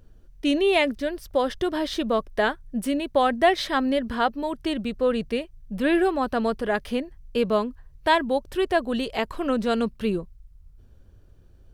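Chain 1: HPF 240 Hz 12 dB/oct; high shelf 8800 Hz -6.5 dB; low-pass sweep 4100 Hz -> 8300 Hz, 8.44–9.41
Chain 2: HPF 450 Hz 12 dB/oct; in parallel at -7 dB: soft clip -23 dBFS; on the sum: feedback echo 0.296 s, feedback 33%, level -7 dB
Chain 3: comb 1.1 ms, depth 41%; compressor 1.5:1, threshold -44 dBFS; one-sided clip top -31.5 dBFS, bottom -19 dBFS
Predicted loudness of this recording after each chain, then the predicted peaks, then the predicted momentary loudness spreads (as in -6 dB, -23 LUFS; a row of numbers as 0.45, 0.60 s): -24.5, -24.5, -35.0 LUFS; -4.5, -5.5, -19.0 dBFS; 10, 9, 8 LU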